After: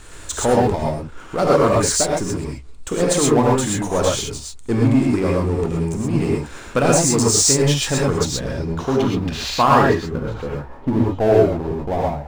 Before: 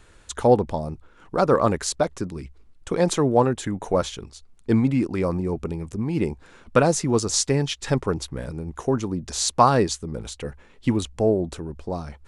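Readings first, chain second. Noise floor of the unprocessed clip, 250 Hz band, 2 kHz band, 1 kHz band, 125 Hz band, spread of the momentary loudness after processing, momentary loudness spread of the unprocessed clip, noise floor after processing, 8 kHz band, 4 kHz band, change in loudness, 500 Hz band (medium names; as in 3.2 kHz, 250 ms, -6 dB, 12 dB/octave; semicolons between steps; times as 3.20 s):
-53 dBFS, +5.0 dB, +7.0 dB, +4.0 dB, +5.5 dB, 12 LU, 14 LU, -37 dBFS, +9.0 dB, +6.5 dB, +5.0 dB, +4.5 dB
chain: low-pass sweep 8.5 kHz -> 800 Hz, 7.99–10.81 s; power-law waveshaper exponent 0.7; gated-style reverb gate 150 ms rising, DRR -3 dB; trim -5 dB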